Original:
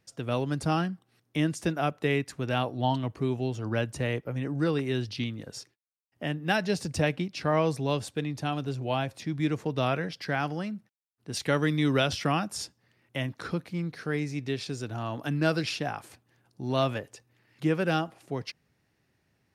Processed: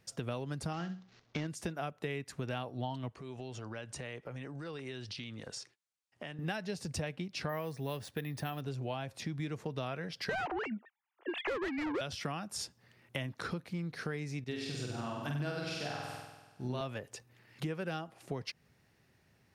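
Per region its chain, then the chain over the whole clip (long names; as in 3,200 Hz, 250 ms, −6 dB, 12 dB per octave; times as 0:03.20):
0:00.73–0:01.47: variable-slope delta modulation 32 kbit/s + flutter between parallel walls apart 11.1 metres, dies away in 0.28 s
0:03.09–0:06.39: low-pass filter 9,700 Hz 24 dB per octave + low-shelf EQ 400 Hz −8 dB + downward compressor, threshold −43 dBFS
0:07.49–0:08.61: parametric band 1,800 Hz +8 dB 0.22 octaves + bad sample-rate conversion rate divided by 3×, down filtered, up hold
0:10.29–0:12.01: three sine waves on the formant tracks + high-pass filter 310 Hz 24 dB per octave + mid-hump overdrive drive 27 dB, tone 1,500 Hz, clips at −15 dBFS
0:14.44–0:16.81: flutter between parallel walls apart 8.2 metres, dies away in 1.3 s + expander for the loud parts, over −43 dBFS
whole clip: parametric band 300 Hz −5 dB 0.24 octaves; downward compressor 6 to 1, threshold −39 dBFS; level +3.5 dB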